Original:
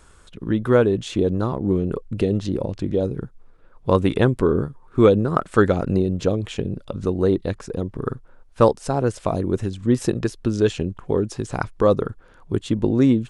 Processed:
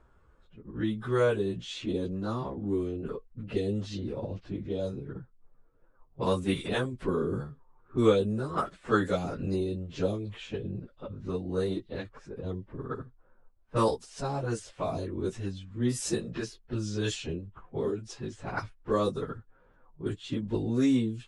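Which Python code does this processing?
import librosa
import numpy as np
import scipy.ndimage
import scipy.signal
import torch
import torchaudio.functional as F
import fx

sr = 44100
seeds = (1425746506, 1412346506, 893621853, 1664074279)

y = librosa.effects.preemphasis(x, coef=0.8, zi=[0.0])
y = fx.stretch_vocoder_free(y, sr, factor=1.6)
y = fx.env_lowpass(y, sr, base_hz=1000.0, full_db=-30.5)
y = y * 10.0 ** (6.0 / 20.0)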